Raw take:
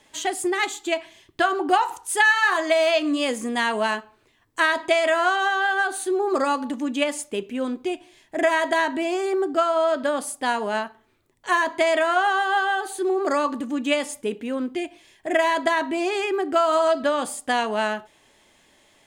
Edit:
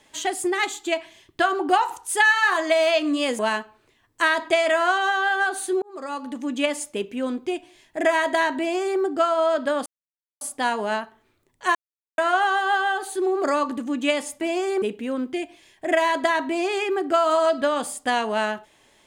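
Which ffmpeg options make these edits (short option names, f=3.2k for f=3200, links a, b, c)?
-filter_complex "[0:a]asplit=8[a][b][c][d][e][f][g][h];[a]atrim=end=3.392[i];[b]atrim=start=3.768:end=6.2,asetpts=PTS-STARTPTS,afade=t=out:st=2.428:d=0.004:c=hsin[j];[c]atrim=start=6.2:end=10.24,asetpts=PTS-STARTPTS,afade=t=in:d=0.78,afade=t=out:st=4.036:d=0.004:c=hsin,apad=pad_dur=0.55[k];[d]atrim=start=10.24:end=11.58,asetpts=PTS-STARTPTS,afade=t=in:d=0.004:c=hsin,afade=t=out:st=1.336:d=0.004:c=hsin[l];[e]atrim=start=11.58:end=12.01,asetpts=PTS-STARTPTS,volume=0[m];[f]atrim=start=12.01:end=14.242,asetpts=PTS-STARTPTS,afade=t=in:d=0.004:c=hsin[n];[g]atrim=start=8.968:end=9.382[o];[h]atrim=start=14.238[p];[j][k][l][m][n]concat=n=5:v=0:a=1[q];[i][q]acrossfade=d=0.004:c1=hsin:c2=hsin[r];[r][o]acrossfade=d=0.004:c1=hsin:c2=hsin[s];[s][p]acrossfade=d=0.004:c1=hsin:c2=hsin"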